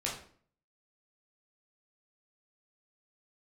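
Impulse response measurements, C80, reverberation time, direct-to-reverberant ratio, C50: 10.0 dB, 0.50 s, -4.5 dB, 6.0 dB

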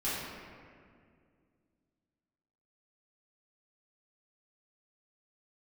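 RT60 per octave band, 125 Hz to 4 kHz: 2.8, 2.9, 2.4, 1.9, 1.8, 1.2 s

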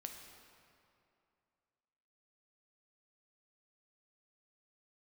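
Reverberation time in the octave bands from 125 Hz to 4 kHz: 2.6, 2.6, 2.6, 2.6, 2.2, 1.7 s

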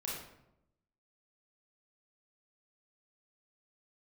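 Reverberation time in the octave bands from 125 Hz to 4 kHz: 1.1, 1.0, 0.90, 0.75, 0.65, 0.50 s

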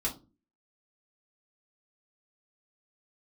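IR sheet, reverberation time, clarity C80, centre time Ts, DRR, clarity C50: 0.30 s, 20.5 dB, 14 ms, -3.5 dB, 13.5 dB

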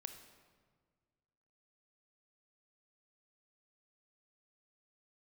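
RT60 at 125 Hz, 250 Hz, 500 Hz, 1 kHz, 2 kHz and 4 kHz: 2.2, 2.0, 1.8, 1.6, 1.3, 1.1 s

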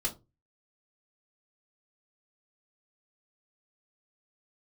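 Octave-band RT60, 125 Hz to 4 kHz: 0.45, 0.30, 0.30, 0.20, 0.15, 0.15 s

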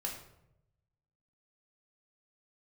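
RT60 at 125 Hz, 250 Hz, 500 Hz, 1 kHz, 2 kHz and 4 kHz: 1.4, 1.0, 0.95, 0.75, 0.60, 0.50 s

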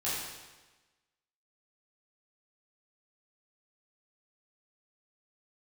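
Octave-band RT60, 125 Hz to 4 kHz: 1.2, 1.2, 1.2, 1.2, 1.2, 1.1 s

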